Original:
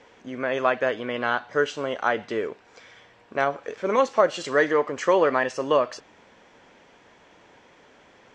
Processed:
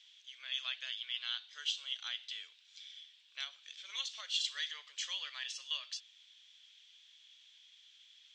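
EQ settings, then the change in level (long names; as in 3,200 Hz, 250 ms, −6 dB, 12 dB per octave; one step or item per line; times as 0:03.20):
four-pole ladder band-pass 3,700 Hz, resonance 70%
spectral tilt +3 dB per octave
high-shelf EQ 5,800 Hz +5.5 dB
0.0 dB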